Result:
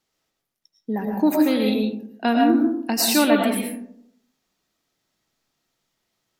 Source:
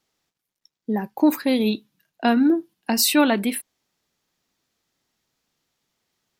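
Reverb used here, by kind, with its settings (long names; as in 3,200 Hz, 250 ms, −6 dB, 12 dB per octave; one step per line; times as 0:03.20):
comb and all-pass reverb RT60 0.73 s, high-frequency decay 0.35×, pre-delay 70 ms, DRR 0.5 dB
level −2 dB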